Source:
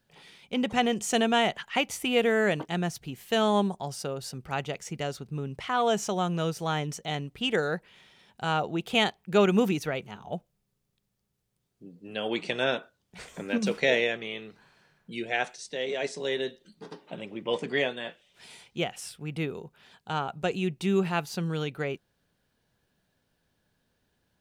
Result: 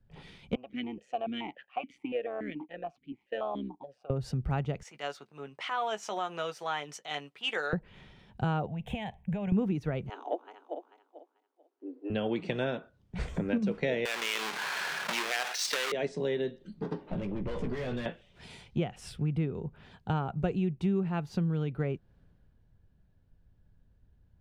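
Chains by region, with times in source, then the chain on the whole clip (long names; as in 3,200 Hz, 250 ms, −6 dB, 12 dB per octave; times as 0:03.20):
0:00.55–0:04.10: low-shelf EQ 390 Hz −9 dB + amplitude modulation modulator 130 Hz, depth 50% + formant filter that steps through the vowels 7 Hz
0:04.83–0:07.73: transient designer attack −10 dB, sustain −5 dB + high-pass filter 890 Hz + double-tracking delay 14 ms −9.5 dB
0:08.66–0:09.52: phaser with its sweep stopped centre 1,300 Hz, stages 6 + downward compressor 10 to 1, threshold −37 dBFS
0:10.09–0:12.10: feedback delay that plays each chunk backwards 220 ms, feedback 57%, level −10 dB + Butterworth high-pass 270 Hz 96 dB per octave
0:14.05–0:15.92: each half-wave held at its own peak + high-pass filter 1,200 Hz + envelope flattener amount 70%
0:17.03–0:18.06: downward compressor 3 to 1, threshold −29 dBFS + tube saturation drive 39 dB, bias 0.4 + double-tracking delay 16 ms −7.5 dB
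whole clip: RIAA equalisation playback; downward compressor 5 to 1, threshold −36 dBFS; multiband upward and downward expander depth 40%; level +6.5 dB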